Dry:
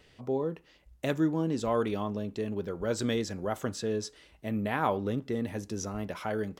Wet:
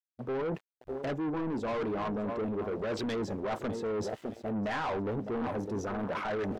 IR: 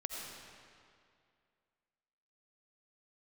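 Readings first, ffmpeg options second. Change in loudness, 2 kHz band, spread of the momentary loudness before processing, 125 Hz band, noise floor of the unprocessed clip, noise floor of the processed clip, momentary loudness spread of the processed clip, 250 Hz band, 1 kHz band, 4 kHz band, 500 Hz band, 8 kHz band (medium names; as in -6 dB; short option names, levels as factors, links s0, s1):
-2.0 dB, -0.5 dB, 7 LU, -4.0 dB, -61 dBFS, under -85 dBFS, 4 LU, -2.5 dB, -0.5 dB, -4.0 dB, -1.0 dB, -10.0 dB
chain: -filter_complex "[0:a]bass=f=250:g=4,treble=f=4000:g=-2,agate=range=0.0224:threshold=0.00355:ratio=3:detection=peak,asplit=2[s0][s1];[s1]aecho=0:1:607|1214|1821:0.178|0.0533|0.016[s2];[s0][s2]amix=inputs=2:normalize=0,flanger=delay=0:depth=3:regen=-77:speed=1.3:shape=sinusoidal,highshelf=f=7000:g=6.5,aeval=exprs='val(0)*gte(abs(val(0)),0.002)':c=same,afwtdn=0.00562,asplit=2[s3][s4];[s4]highpass=f=720:p=1,volume=15.8,asoftclip=type=tanh:threshold=0.133[s5];[s3][s5]amix=inputs=2:normalize=0,lowpass=f=2100:p=1,volume=0.501,areverse,acompressor=threshold=0.0141:ratio=6,areverse,asoftclip=type=tanh:threshold=0.0141,volume=2.66"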